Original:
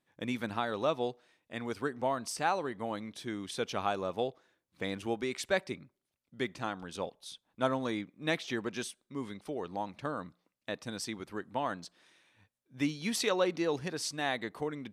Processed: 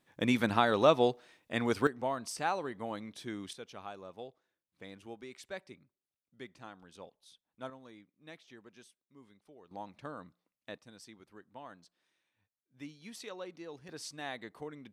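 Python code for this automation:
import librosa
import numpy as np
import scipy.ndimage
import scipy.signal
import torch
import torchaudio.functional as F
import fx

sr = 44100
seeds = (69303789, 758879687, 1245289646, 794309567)

y = fx.gain(x, sr, db=fx.steps((0.0, 6.5), (1.87, -2.5), (3.53, -13.0), (7.7, -19.5), (9.71, -7.5), (10.78, -15.0), (13.89, -8.0)))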